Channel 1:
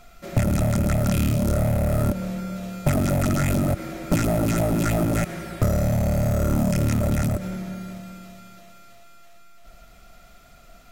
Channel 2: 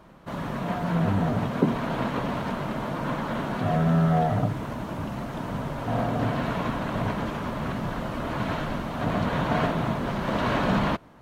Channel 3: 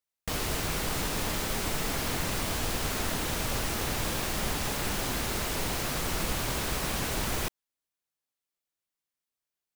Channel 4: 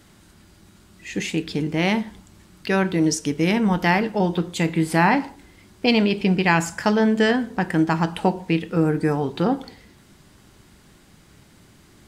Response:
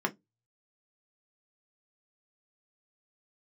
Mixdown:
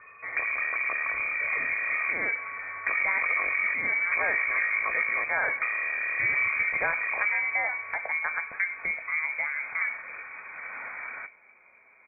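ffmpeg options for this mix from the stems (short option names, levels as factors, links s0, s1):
-filter_complex "[0:a]equalizer=f=1000:w=1.8:g=4.5,volume=0.668,asplit=2[s0][s1];[s1]volume=0.316[s2];[1:a]adelay=300,volume=0.158,asplit=2[s3][s4];[s4]volume=0.224[s5];[3:a]adelay=350,volume=0.447,asplit=2[s6][s7];[s7]volume=0.282[s8];[4:a]atrim=start_sample=2205[s9];[s2][s5][s8]amix=inputs=3:normalize=0[s10];[s10][s9]afir=irnorm=-1:irlink=0[s11];[s0][s3][s6][s11]amix=inputs=4:normalize=0,lowpass=f=2100:t=q:w=0.5098,lowpass=f=2100:t=q:w=0.6013,lowpass=f=2100:t=q:w=0.9,lowpass=f=2100:t=q:w=2.563,afreqshift=-2500,acompressor=threshold=0.02:ratio=1.5"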